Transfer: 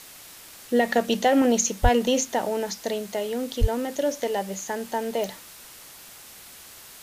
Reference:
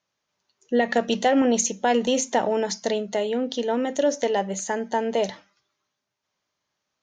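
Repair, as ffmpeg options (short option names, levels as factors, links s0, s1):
-filter_complex "[0:a]adeclick=t=4,asplit=3[s0][s1][s2];[s0]afade=t=out:st=1.82:d=0.02[s3];[s1]highpass=f=140:w=0.5412,highpass=f=140:w=1.3066,afade=t=in:st=1.82:d=0.02,afade=t=out:st=1.94:d=0.02[s4];[s2]afade=t=in:st=1.94:d=0.02[s5];[s3][s4][s5]amix=inputs=3:normalize=0,asplit=3[s6][s7][s8];[s6]afade=t=out:st=3.6:d=0.02[s9];[s7]highpass=f=140:w=0.5412,highpass=f=140:w=1.3066,afade=t=in:st=3.6:d=0.02,afade=t=out:st=3.72:d=0.02[s10];[s8]afade=t=in:st=3.72:d=0.02[s11];[s9][s10][s11]amix=inputs=3:normalize=0,afwtdn=0.0063,asetnsamples=n=441:p=0,asendcmd='2.25 volume volume 3.5dB',volume=1"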